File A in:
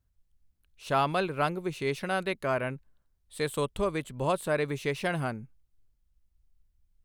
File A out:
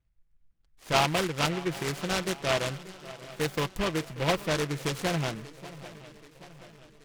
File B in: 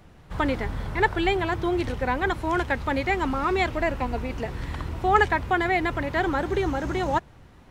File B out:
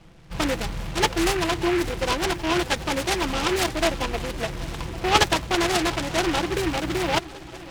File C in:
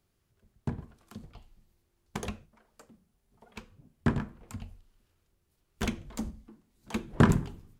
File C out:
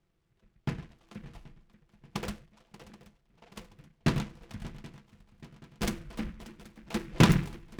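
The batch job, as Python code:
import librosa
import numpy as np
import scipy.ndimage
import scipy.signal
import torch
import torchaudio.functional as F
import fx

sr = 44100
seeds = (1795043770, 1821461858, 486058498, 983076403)

y = x + 0.49 * np.pad(x, (int(6.0 * sr / 1000.0), 0))[:len(x)]
y = fx.env_lowpass(y, sr, base_hz=2300.0, full_db=-19.5)
y = fx.echo_swing(y, sr, ms=779, ratio=3, feedback_pct=52, wet_db=-18)
y = fx.noise_mod_delay(y, sr, seeds[0], noise_hz=1700.0, depth_ms=0.14)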